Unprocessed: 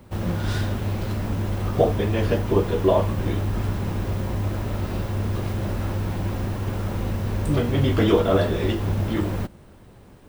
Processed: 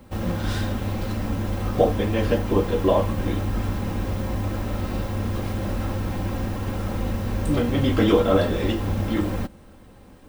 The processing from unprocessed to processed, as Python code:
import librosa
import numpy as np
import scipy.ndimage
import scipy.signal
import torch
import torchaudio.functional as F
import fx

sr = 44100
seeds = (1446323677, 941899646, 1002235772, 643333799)

y = x + 0.41 * np.pad(x, (int(3.8 * sr / 1000.0), 0))[:len(x)]